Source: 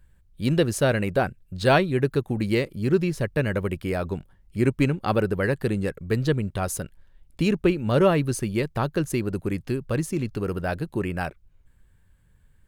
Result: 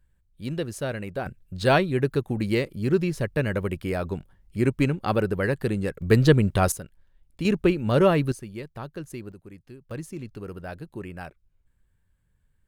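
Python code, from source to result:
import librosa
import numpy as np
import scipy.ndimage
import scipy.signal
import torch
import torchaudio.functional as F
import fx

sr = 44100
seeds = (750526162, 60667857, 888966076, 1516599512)

y = fx.gain(x, sr, db=fx.steps((0.0, -8.5), (1.26, -1.0), (6.02, 6.0), (6.72, -6.5), (7.45, 0.0), (8.32, -11.5), (9.32, -18.0), (9.91, -9.5)))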